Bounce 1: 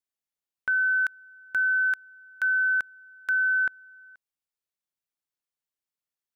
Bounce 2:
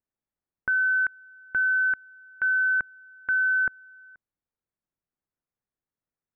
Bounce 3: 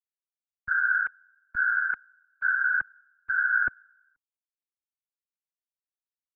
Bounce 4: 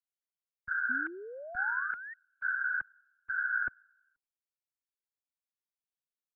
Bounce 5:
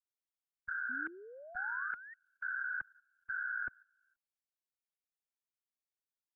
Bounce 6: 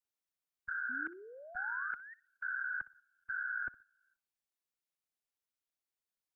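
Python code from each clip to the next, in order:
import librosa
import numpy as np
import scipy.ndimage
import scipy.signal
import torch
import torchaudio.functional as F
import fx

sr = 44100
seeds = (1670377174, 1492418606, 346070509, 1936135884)

y1 = scipy.signal.sosfilt(scipy.signal.butter(4, 2000.0, 'lowpass', fs=sr, output='sos'), x)
y1 = fx.low_shelf(y1, sr, hz=450.0, db=11.5)
y2 = fx.whisperise(y1, sr, seeds[0])
y2 = fx.band_widen(y2, sr, depth_pct=100)
y2 = y2 * librosa.db_to_amplitude(-2.0)
y3 = fx.spec_paint(y2, sr, seeds[1], shape='rise', start_s=0.89, length_s=1.25, low_hz=240.0, high_hz=1900.0, level_db=-36.0)
y3 = y3 * librosa.db_to_amplitude(-7.5)
y4 = fx.level_steps(y3, sr, step_db=13)
y4 = y4 * librosa.db_to_amplitude(1.0)
y5 = fx.echo_feedback(y4, sr, ms=62, feedback_pct=20, wet_db=-19.0)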